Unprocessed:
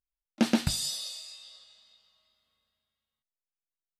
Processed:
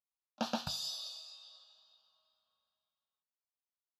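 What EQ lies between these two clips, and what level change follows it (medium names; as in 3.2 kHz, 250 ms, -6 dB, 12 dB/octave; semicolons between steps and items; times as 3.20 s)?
boxcar filter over 5 samples; high-pass 630 Hz 6 dB/octave; static phaser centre 850 Hz, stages 4; +1.0 dB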